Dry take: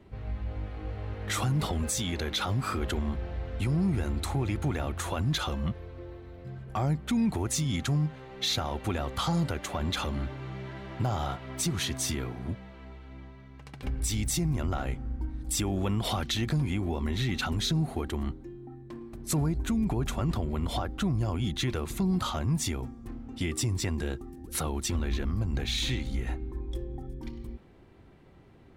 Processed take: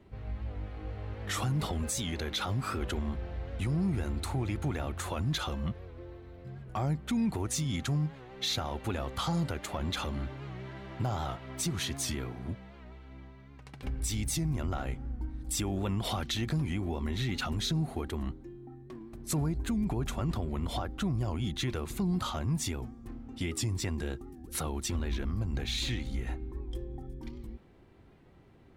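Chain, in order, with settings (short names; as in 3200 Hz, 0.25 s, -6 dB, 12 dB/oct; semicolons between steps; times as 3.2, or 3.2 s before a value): record warp 78 rpm, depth 100 cents; gain -3 dB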